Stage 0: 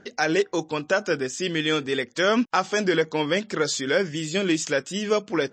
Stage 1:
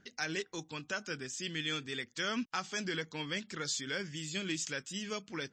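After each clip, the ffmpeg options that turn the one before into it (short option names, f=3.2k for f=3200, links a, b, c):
-af "equalizer=f=560:t=o:w=2.2:g=-13.5,volume=-7.5dB"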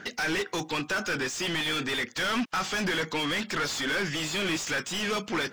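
-filter_complex "[0:a]asplit=2[a][b];[b]highpass=f=720:p=1,volume=33dB,asoftclip=type=tanh:threshold=-19dB[c];[a][c]amix=inputs=2:normalize=0,lowpass=f=2.2k:p=1,volume=-6dB"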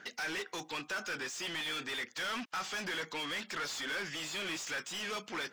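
-af "lowshelf=f=330:g=-10,volume=-7.5dB"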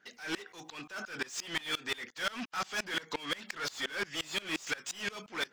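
-af "aeval=exprs='val(0)*pow(10,-25*if(lt(mod(-5.7*n/s,1),2*abs(-5.7)/1000),1-mod(-5.7*n/s,1)/(2*abs(-5.7)/1000),(mod(-5.7*n/s,1)-2*abs(-5.7)/1000)/(1-2*abs(-5.7)/1000))/20)':c=same,volume=8.5dB"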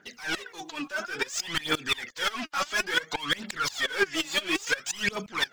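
-af "aphaser=in_gain=1:out_gain=1:delay=3.7:decay=0.67:speed=0.58:type=triangular,volume=5dB"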